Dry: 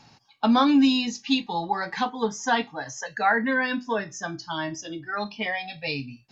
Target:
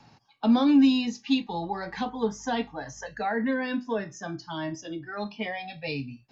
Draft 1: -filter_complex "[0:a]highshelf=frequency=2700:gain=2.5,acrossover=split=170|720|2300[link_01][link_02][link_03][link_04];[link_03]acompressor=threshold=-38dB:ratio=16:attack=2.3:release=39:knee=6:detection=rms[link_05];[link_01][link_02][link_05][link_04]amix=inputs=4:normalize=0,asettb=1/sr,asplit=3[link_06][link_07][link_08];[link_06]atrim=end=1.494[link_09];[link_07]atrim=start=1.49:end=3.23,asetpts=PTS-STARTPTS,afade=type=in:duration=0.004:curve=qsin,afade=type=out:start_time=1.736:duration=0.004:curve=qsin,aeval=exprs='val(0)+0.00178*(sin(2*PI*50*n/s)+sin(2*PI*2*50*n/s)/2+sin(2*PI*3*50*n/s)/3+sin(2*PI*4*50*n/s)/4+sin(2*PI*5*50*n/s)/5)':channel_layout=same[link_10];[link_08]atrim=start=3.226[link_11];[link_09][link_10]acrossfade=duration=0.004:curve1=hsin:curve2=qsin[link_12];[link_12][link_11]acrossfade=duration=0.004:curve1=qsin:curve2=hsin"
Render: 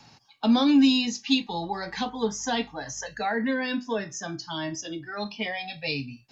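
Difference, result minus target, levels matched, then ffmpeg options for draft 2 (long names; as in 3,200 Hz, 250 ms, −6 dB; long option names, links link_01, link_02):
4,000 Hz band +6.0 dB
-filter_complex "[0:a]highshelf=frequency=2700:gain=-8.5,acrossover=split=170|720|2300[link_01][link_02][link_03][link_04];[link_03]acompressor=threshold=-38dB:ratio=16:attack=2.3:release=39:knee=6:detection=rms[link_05];[link_01][link_02][link_05][link_04]amix=inputs=4:normalize=0,asettb=1/sr,asplit=3[link_06][link_07][link_08];[link_06]atrim=end=1.494[link_09];[link_07]atrim=start=1.49:end=3.23,asetpts=PTS-STARTPTS,afade=type=in:duration=0.004:curve=qsin,afade=type=out:start_time=1.736:duration=0.004:curve=qsin,aeval=exprs='val(0)+0.00178*(sin(2*PI*50*n/s)+sin(2*PI*2*50*n/s)/2+sin(2*PI*3*50*n/s)/3+sin(2*PI*4*50*n/s)/4+sin(2*PI*5*50*n/s)/5)':channel_layout=same[link_10];[link_08]atrim=start=3.226[link_11];[link_09][link_10]acrossfade=duration=0.004:curve1=hsin:curve2=qsin[link_12];[link_12][link_11]acrossfade=duration=0.004:curve1=qsin:curve2=hsin"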